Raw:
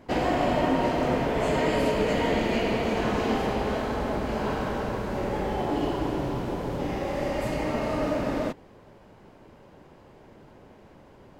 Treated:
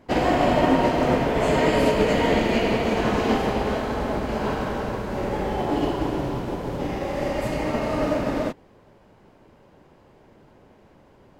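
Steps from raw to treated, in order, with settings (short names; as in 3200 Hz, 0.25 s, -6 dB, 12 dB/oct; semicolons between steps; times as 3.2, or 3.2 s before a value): upward expander 1.5:1, over -37 dBFS; gain +6 dB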